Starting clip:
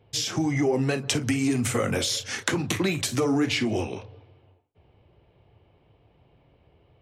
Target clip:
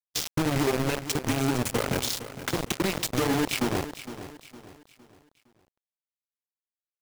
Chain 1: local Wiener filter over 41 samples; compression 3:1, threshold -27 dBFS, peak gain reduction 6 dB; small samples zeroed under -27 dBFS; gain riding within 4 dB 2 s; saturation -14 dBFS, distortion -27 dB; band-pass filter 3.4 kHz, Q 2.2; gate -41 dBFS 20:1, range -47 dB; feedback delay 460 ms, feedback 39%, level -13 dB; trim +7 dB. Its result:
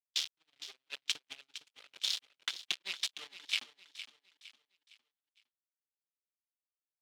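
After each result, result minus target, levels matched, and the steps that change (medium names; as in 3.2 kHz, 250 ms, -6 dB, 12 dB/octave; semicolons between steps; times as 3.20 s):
4 kHz band +8.5 dB; saturation: distortion -11 dB
remove: band-pass filter 3.4 kHz, Q 2.2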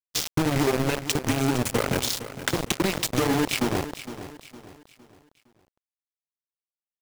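saturation: distortion -11 dB
change: saturation -24 dBFS, distortion -17 dB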